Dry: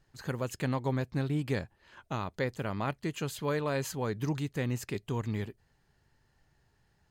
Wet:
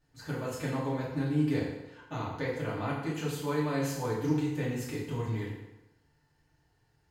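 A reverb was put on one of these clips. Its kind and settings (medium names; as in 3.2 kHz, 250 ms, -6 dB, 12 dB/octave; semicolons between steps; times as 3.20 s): FDN reverb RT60 1 s, low-frequency decay 0.85×, high-frequency decay 0.8×, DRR -7 dB; trim -8 dB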